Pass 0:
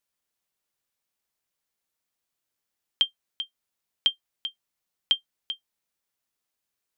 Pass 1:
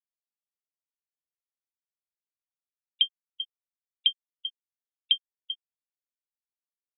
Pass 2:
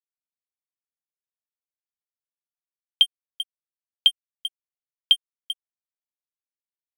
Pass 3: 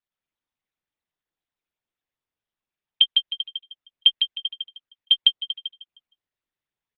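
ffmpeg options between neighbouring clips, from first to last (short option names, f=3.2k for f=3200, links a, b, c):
-af "afftfilt=real='re*gte(hypot(re,im),0.0447)':imag='im*gte(hypot(re,im),0.0447)':win_size=1024:overlap=0.75"
-af "aeval=exprs='sgn(val(0))*max(abs(val(0))-0.0106,0)':c=same,volume=6.5dB"
-filter_complex "[0:a]acrossover=split=4600|5400|6800[a][b][c][d];[b]acrusher=bits=5:mix=0:aa=0.5[e];[a][e][c][d]amix=inputs=4:normalize=0,aecho=1:1:155|310|465|620:0.668|0.194|0.0562|0.0163,volume=1.5dB" -ar 48000 -c:a libopus -b:a 8k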